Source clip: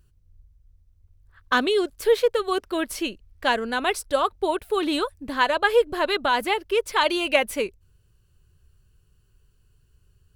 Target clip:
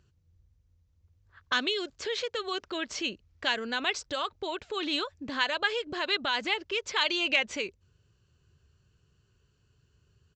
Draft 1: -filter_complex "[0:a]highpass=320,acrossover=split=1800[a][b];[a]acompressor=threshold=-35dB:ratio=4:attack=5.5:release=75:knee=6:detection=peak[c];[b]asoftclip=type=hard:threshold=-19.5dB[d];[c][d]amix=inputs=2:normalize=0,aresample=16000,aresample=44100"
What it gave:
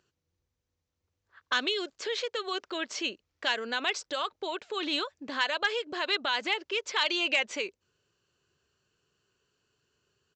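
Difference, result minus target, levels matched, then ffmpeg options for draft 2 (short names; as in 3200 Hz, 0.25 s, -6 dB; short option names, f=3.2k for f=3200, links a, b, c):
hard clip: distortion +19 dB; 125 Hz band -10.5 dB
-filter_complex "[0:a]highpass=93,acrossover=split=1800[a][b];[a]acompressor=threshold=-35dB:ratio=4:attack=5.5:release=75:knee=6:detection=peak[c];[b]asoftclip=type=hard:threshold=-13.5dB[d];[c][d]amix=inputs=2:normalize=0,aresample=16000,aresample=44100"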